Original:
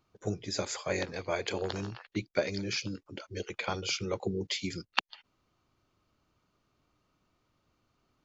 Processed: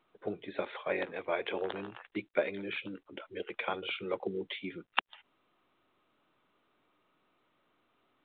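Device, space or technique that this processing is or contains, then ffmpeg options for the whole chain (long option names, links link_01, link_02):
telephone: -filter_complex "[0:a]asettb=1/sr,asplit=3[link_01][link_02][link_03];[link_01]atrim=end=4.154[link_04];[link_02]atrim=start=4.15:end=4.9,asetpts=PTS-STARTPTS,afade=type=in:duration=0.004:curve=qsin,afade=type=out:start_time=0.746:duration=0.004:curve=qsin,highshelf=frequency=3800:gain=-7[link_05];[link_03]atrim=start=4.896[link_06];[link_04][link_05]acrossfade=duration=0.004:curve1=hsin:curve2=qsin[link_07];[link_07][link_06]acrossfade=duration=0.004:curve1=qsin:curve2=hsin,highpass=280,lowpass=3600" -ar 8000 -c:a pcm_mulaw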